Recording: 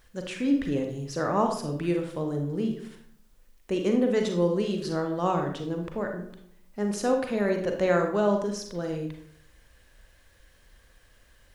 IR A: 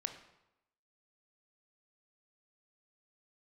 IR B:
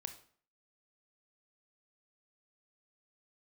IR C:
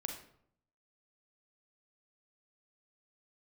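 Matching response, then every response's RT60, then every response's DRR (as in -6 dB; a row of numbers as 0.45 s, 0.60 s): C; 0.90 s, 0.50 s, 0.65 s; 7.0 dB, 7.5 dB, 3.0 dB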